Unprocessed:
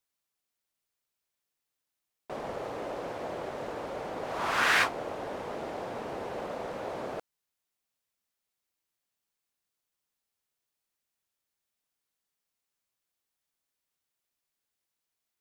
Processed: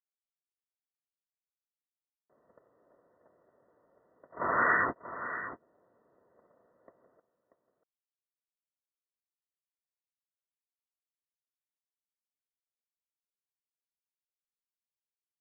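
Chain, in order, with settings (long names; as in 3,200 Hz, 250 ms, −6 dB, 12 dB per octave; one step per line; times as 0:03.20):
0:04.75–0:05.61: parametric band 660 Hz −6.5 dB 1.1 octaves
noise gate −30 dBFS, range −45 dB
in parallel at −2 dB: compressor whose output falls as the input rises −42 dBFS, ratio −1
on the sum: linear-phase brick-wall low-pass 2,000 Hz
notch comb filter 820 Hz
single-tap delay 636 ms −11.5 dB
level +1 dB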